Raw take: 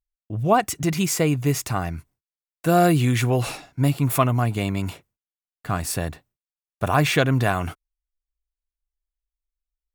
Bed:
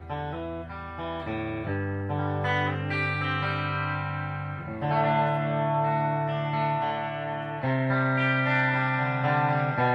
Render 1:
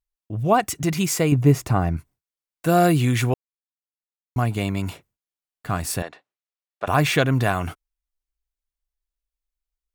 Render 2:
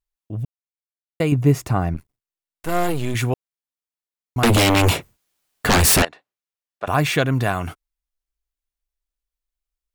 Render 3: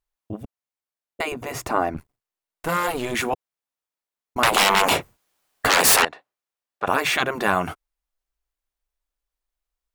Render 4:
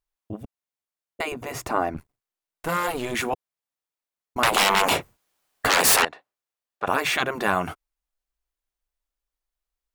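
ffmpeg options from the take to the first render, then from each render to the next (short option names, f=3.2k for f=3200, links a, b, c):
-filter_complex "[0:a]asettb=1/sr,asplit=3[a][b][c];[a]atrim=end=1.324[d];[b]atrim=start=1.32:end=1.97,asetpts=PTS-STARTPTS,afade=t=in:d=0.004:c=qsin,afade=t=out:st=0.646:d=0.004:c=qsin,tiltshelf=f=1.4k:g=6.5[e];[c]atrim=start=1.966[f];[d][e]acrossfade=d=0.004:c1=hsin:c2=qsin[g];[g][f]acrossfade=d=0.004:c1=qsin:c2=hsin,asettb=1/sr,asplit=3[h][i][j];[h]atrim=end=6.024[k];[i]atrim=start=6.02:end=6.88,asetpts=PTS-STARTPTS,afade=t=in:d=0.004:c=qsin,afade=t=out:st=0.856:d=0.004:c=qsin,highpass=460,lowpass=4.3k[l];[j]atrim=start=6.876[m];[k][l]acrossfade=d=0.004:c1=hsin:c2=qsin[n];[n][m]acrossfade=d=0.004:c1=qsin:c2=hsin,asplit=3[o][p][q];[o]atrim=end=3.34,asetpts=PTS-STARTPTS,afade=t=out:st=3.336:d=0.004:c=hsin[r];[p]atrim=start=3.34:end=4.36,asetpts=PTS-STARTPTS,volume=0[s];[q]atrim=start=4.36,asetpts=PTS-STARTPTS,afade=t=in:d=0.004:c=hsin[t];[r][s][t]concat=n=3:v=0:a=1"
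-filter_complex "[0:a]asettb=1/sr,asplit=3[a][b][c];[a]atrim=end=1.944[d];[b]atrim=start=1.94:end=3.15,asetpts=PTS-STARTPTS,afade=t=in:d=0.004:c=qsin,afade=t=out:st=1.206:d=0.004:c=qsin,aeval=exprs='max(val(0),0)':c=same[e];[c]atrim=start=3.146[f];[d][e]acrossfade=d=0.004:c1=hsin:c2=qsin[g];[g][f]acrossfade=d=0.004:c1=qsin:c2=hsin,asettb=1/sr,asplit=3[h][i][j];[h]atrim=end=4.434[k];[i]atrim=start=4.43:end=6.05,asetpts=PTS-STARTPTS,afade=t=in:d=0.004:c=qsin,afade=t=out:st=1.616:d=0.004:c=qsin,aeval=exprs='0.282*sin(PI/2*6.31*val(0)/0.282)':c=same[l];[j]atrim=start=6.046[m];[k][l]acrossfade=d=0.004:c1=hsin:c2=qsin[n];[n][m]acrossfade=d=0.004:c1=qsin:c2=hsin,asplit=3[o][p][q];[o]atrim=end=0.45,asetpts=PTS-STARTPTS,afade=t=out:st=0.446:d=0.004:c=hsin[r];[p]atrim=start=0.45:end=1.2,asetpts=PTS-STARTPTS,volume=0[s];[q]atrim=start=1.2,asetpts=PTS-STARTPTS,afade=t=in:d=0.004:c=hsin[t];[r][s][t]concat=n=3:v=0:a=1"
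-af "afftfilt=real='re*lt(hypot(re,im),0.398)':imag='im*lt(hypot(re,im),0.398)':win_size=1024:overlap=0.75,equalizer=f=820:w=0.53:g=6.5"
-af "volume=-2dB"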